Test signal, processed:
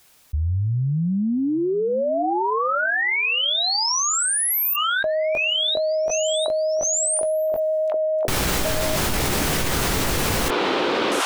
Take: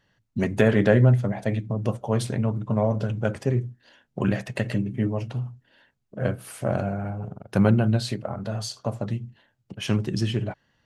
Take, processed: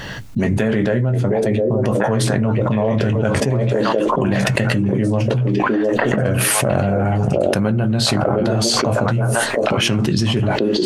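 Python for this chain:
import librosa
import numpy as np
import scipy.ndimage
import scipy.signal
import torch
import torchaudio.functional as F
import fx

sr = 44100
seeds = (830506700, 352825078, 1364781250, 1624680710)

p1 = x + fx.echo_stepped(x, sr, ms=709, hz=410.0, octaves=1.4, feedback_pct=70, wet_db=-3.5, dry=0)
p2 = fx.chorus_voices(p1, sr, voices=6, hz=0.47, base_ms=18, depth_ms=4.7, mix_pct=25)
y = fx.env_flatten(p2, sr, amount_pct=100)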